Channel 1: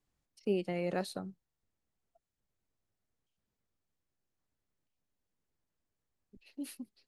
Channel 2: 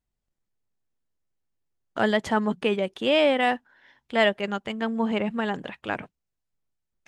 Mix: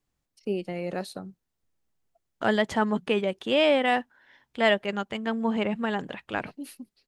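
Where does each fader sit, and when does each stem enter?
+2.5 dB, -1.0 dB; 0.00 s, 0.45 s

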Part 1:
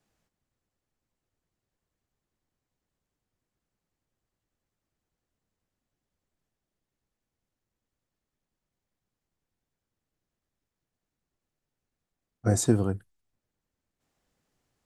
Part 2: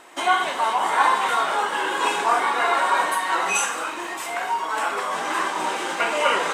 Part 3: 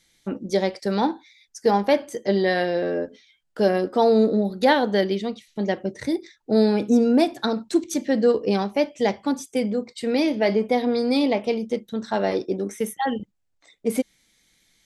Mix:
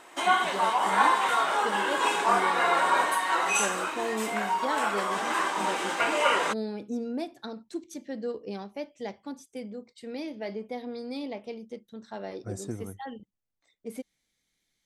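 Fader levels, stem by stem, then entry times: -13.5 dB, -3.5 dB, -15.0 dB; 0.00 s, 0.00 s, 0.00 s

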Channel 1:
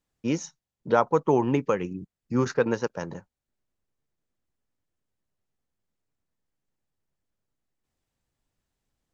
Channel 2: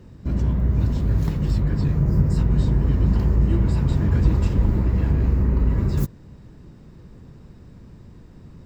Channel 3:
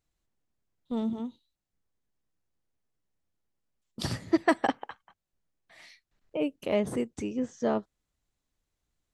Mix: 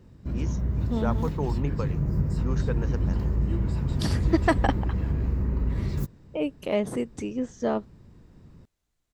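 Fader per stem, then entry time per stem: -10.0 dB, -7.0 dB, +1.5 dB; 0.10 s, 0.00 s, 0.00 s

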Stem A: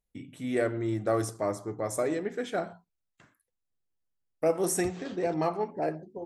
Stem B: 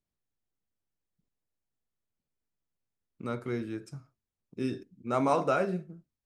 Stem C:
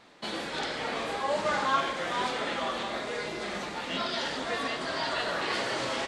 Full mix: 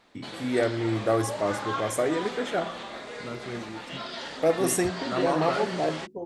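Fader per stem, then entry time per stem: +3.0 dB, -3.0 dB, -5.0 dB; 0.00 s, 0.00 s, 0.00 s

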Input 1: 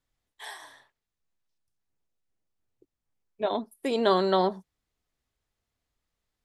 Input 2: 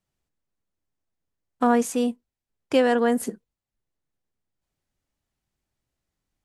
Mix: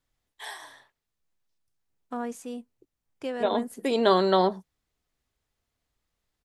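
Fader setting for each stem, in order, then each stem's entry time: +2.0 dB, -13.5 dB; 0.00 s, 0.50 s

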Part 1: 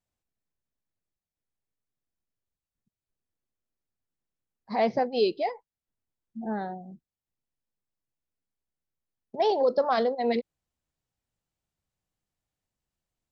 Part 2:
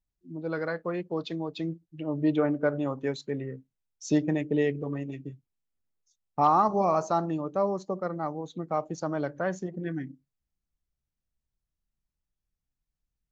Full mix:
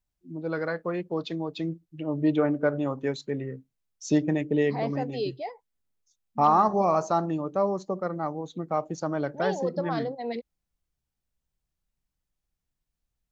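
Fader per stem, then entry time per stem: -6.5 dB, +1.5 dB; 0.00 s, 0.00 s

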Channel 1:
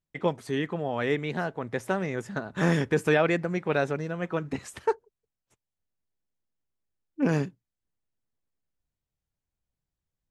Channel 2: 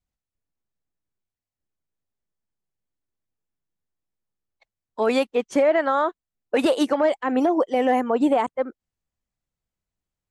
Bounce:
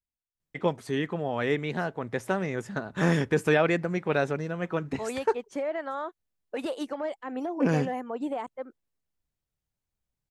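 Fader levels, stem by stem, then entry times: 0.0 dB, -12.5 dB; 0.40 s, 0.00 s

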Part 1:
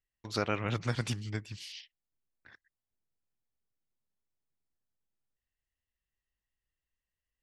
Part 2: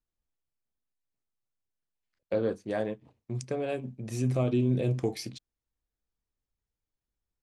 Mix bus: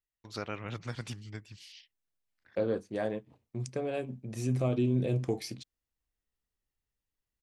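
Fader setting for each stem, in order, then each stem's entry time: -6.5 dB, -2.0 dB; 0.00 s, 0.25 s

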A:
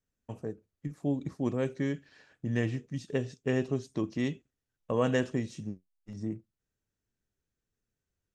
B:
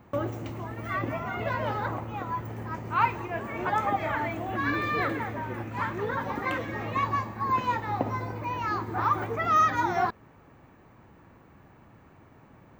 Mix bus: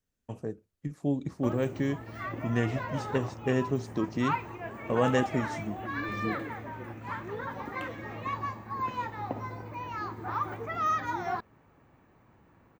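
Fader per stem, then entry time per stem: +1.5 dB, -6.5 dB; 0.00 s, 1.30 s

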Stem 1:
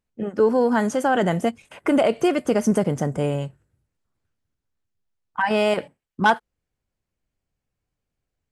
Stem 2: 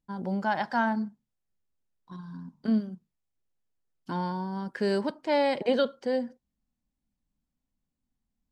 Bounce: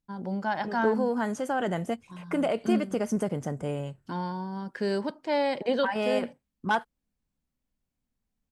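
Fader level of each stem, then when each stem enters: -8.5 dB, -1.5 dB; 0.45 s, 0.00 s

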